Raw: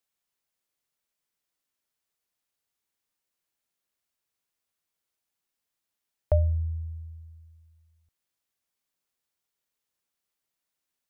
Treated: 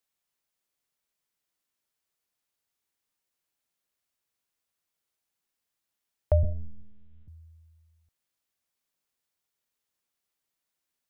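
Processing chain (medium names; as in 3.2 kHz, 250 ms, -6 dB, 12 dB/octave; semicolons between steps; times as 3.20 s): 6.43–7.28 s: monotone LPC vocoder at 8 kHz 210 Hz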